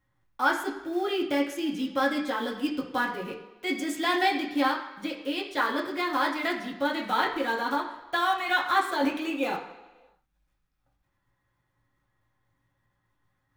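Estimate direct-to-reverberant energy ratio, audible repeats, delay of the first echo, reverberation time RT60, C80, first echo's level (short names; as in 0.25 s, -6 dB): -3.0 dB, none, none, 1.2 s, 10.5 dB, none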